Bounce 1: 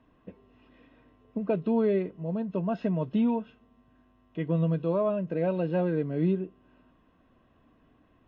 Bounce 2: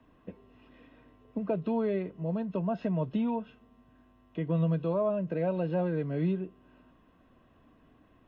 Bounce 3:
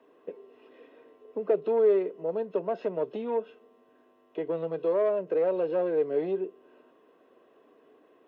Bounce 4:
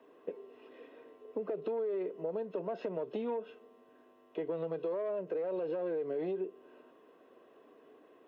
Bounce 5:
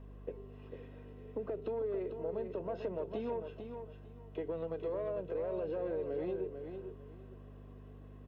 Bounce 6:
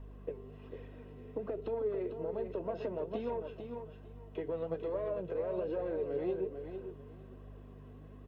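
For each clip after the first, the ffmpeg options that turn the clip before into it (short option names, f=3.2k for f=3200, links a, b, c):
-filter_complex "[0:a]acrossover=split=170|570|980[a][b][c][d];[b]acompressor=threshold=-36dB:ratio=6[e];[d]alimiter=level_in=19dB:limit=-24dB:level=0:latency=1:release=167,volume=-19dB[f];[a][e][c][f]amix=inputs=4:normalize=0,volume=1.5dB"
-af "asoftclip=type=tanh:threshold=-25dB,highpass=f=420:t=q:w=4.5"
-af "alimiter=level_in=0.5dB:limit=-24dB:level=0:latency=1:release=44,volume=-0.5dB,acompressor=threshold=-32dB:ratio=6"
-af "aeval=exprs='val(0)+0.00447*(sin(2*PI*50*n/s)+sin(2*PI*2*50*n/s)/2+sin(2*PI*3*50*n/s)/3+sin(2*PI*4*50*n/s)/4+sin(2*PI*5*50*n/s)/5)':c=same,aecho=1:1:448|896|1344:0.422|0.097|0.0223,volume=-2.5dB"
-af "flanger=delay=0.9:depth=7.9:regen=59:speed=1.2:shape=triangular,volume=5.5dB"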